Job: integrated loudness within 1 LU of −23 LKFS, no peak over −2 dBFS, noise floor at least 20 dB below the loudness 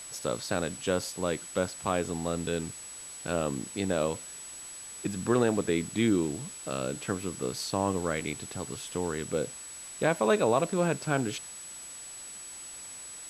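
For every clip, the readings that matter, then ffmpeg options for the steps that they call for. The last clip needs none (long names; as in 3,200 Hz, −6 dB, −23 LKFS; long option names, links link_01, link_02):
interfering tone 7,900 Hz; level of the tone −42 dBFS; background noise floor −44 dBFS; target noise floor −52 dBFS; integrated loudness −31.5 LKFS; sample peak −11.0 dBFS; target loudness −23.0 LKFS
→ -af "bandreject=frequency=7900:width=30"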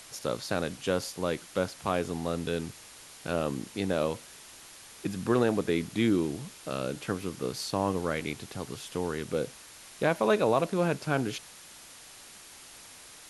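interfering tone none found; background noise floor −50 dBFS; target noise floor −51 dBFS
→ -af "afftdn=noise_reduction=6:noise_floor=-50"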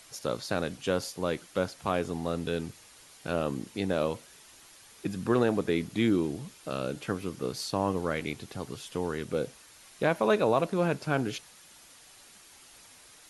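background noise floor −55 dBFS; integrated loudness −31.0 LKFS; sample peak −11.0 dBFS; target loudness −23.0 LKFS
→ -af "volume=8dB"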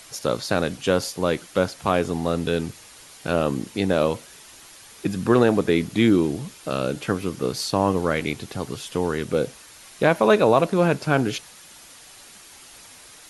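integrated loudness −23.0 LKFS; sample peak −3.0 dBFS; background noise floor −47 dBFS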